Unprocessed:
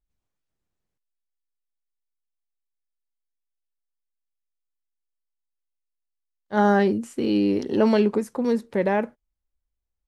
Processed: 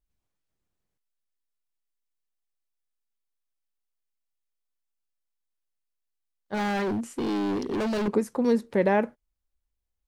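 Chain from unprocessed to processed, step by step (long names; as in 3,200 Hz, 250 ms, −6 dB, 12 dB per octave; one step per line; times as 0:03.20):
0:06.54–0:08.08: hard clipping −25.5 dBFS, distortion −4 dB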